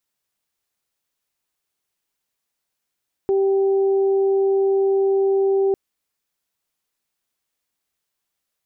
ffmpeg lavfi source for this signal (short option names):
-f lavfi -i "aevalsrc='0.178*sin(2*PI*390*t)+0.0266*sin(2*PI*780*t)':d=2.45:s=44100"